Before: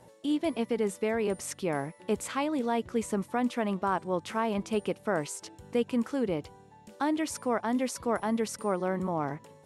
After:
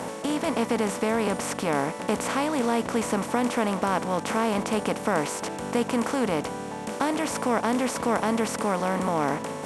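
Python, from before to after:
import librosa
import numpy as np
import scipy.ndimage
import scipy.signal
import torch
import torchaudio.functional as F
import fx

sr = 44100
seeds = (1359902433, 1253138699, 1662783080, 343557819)

y = fx.bin_compress(x, sr, power=0.4)
y = fx.peak_eq(y, sr, hz=360.0, db=-8.5, octaves=0.28)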